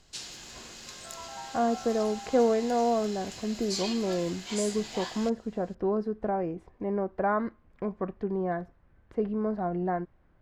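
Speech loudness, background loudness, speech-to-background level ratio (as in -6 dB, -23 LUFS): -30.0 LUFS, -39.5 LUFS, 9.5 dB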